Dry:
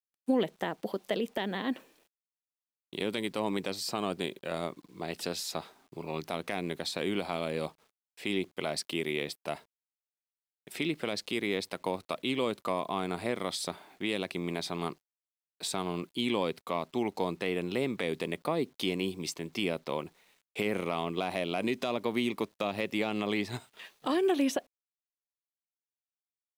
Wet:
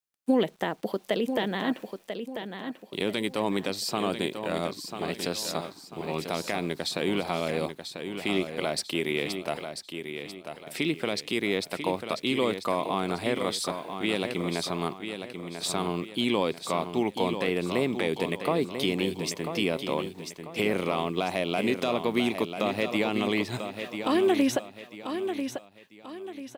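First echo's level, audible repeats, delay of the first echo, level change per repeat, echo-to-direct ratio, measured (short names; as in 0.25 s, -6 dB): -8.0 dB, 3, 0.992 s, -8.5 dB, -7.5 dB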